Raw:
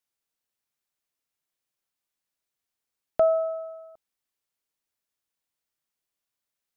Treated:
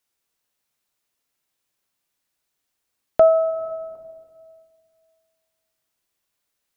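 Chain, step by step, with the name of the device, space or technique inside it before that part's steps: compressed reverb return (on a send at -4 dB: reverb RT60 1.8 s, pre-delay 8 ms + compressor 10:1, threshold -37 dBFS, peak gain reduction 18.5 dB); on the sum: gain +7 dB

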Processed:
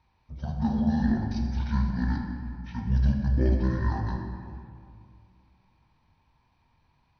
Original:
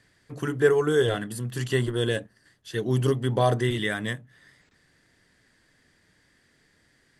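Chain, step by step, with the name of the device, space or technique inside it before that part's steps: monster voice (pitch shift -11.5 st; low shelf 160 Hz +9 dB; reverb RT60 2.3 s, pre-delay 3 ms, DRR 1 dB); gain -8.5 dB

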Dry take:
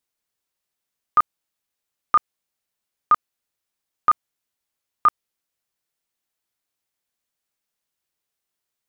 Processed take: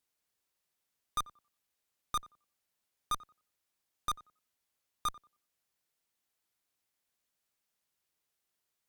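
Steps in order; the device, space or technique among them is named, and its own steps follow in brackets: rockabilly slapback (tube stage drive 31 dB, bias 0.6; tape echo 90 ms, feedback 27%, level -16.5 dB, low-pass 1300 Hz); gain +1.5 dB

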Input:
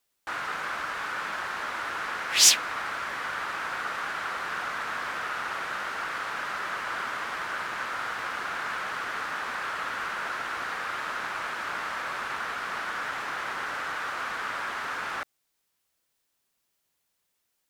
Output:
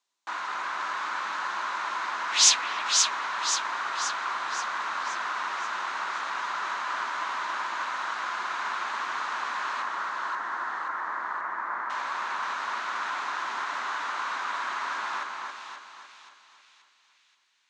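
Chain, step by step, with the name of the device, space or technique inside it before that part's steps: 9.82–11.9 Chebyshev band-pass 160–1900 Hz, order 4; television speaker (speaker cabinet 220–7700 Hz, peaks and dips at 270 Hz -3 dB, 480 Hz -8 dB, 1000 Hz +10 dB, 3900 Hz +5 dB, 6500 Hz +5 dB); split-band echo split 2500 Hz, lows 0.276 s, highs 0.529 s, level -4 dB; gain -3.5 dB

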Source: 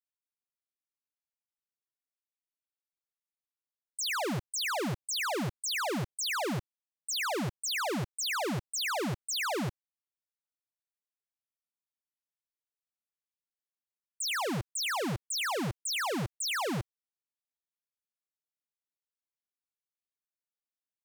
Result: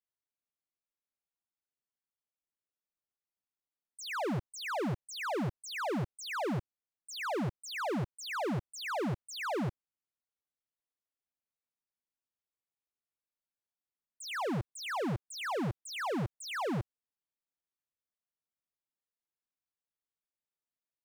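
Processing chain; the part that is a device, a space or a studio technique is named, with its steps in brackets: through cloth (high shelf 2500 Hz -13.5 dB)

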